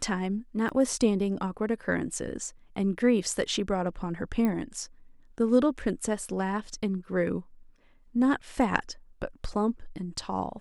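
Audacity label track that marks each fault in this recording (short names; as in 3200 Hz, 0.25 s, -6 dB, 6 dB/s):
0.690000	0.700000	gap 6.1 ms
4.450000	4.450000	pop -17 dBFS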